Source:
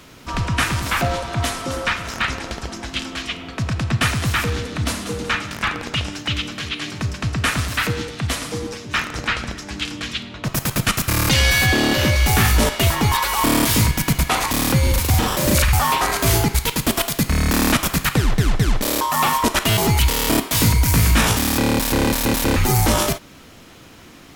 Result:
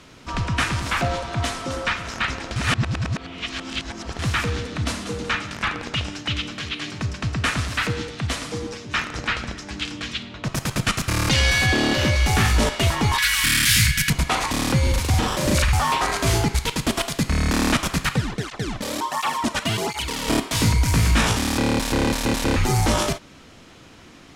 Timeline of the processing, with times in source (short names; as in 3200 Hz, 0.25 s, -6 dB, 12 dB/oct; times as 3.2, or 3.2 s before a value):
2.56–4.19 reverse
13.18–14.1 EQ curve 150 Hz 0 dB, 310 Hz -15 dB, 640 Hz -27 dB, 980 Hz -16 dB, 1600 Hz +9 dB, 6900 Hz +6 dB, 16000 Hz +14 dB
18.15–20.28 tape flanging out of phase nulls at 1.4 Hz, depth 3.1 ms
whole clip: LPF 8400 Hz 12 dB/oct; gain -2.5 dB